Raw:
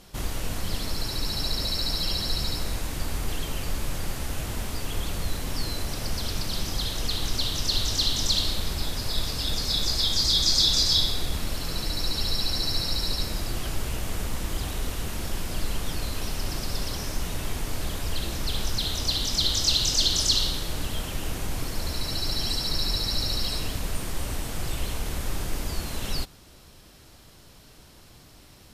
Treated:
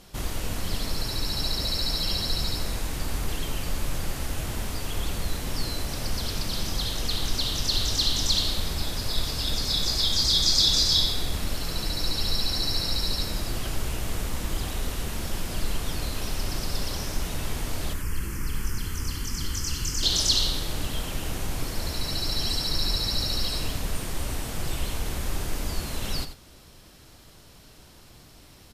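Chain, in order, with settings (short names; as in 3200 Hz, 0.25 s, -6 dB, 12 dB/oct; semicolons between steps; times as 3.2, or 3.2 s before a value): 17.93–20.03 fixed phaser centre 1600 Hz, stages 4; echo 89 ms -11 dB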